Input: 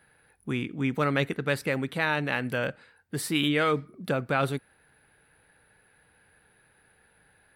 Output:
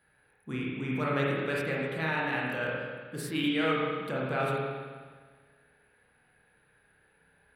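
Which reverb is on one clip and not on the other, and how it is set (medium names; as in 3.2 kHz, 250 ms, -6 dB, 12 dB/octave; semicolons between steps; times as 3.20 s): spring tank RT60 1.6 s, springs 31/50 ms, chirp 70 ms, DRR -4.5 dB; trim -8.5 dB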